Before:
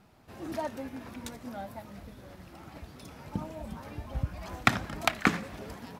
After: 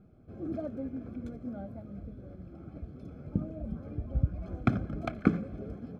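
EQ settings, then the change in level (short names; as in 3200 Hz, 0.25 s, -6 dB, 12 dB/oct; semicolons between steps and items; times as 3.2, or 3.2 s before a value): running mean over 47 samples; +4.5 dB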